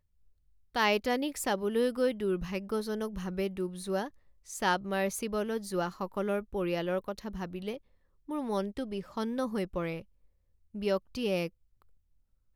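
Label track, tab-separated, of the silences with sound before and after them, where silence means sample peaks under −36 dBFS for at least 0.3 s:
4.070000	4.500000	silence
7.760000	8.290000	silence
10.000000	10.750000	silence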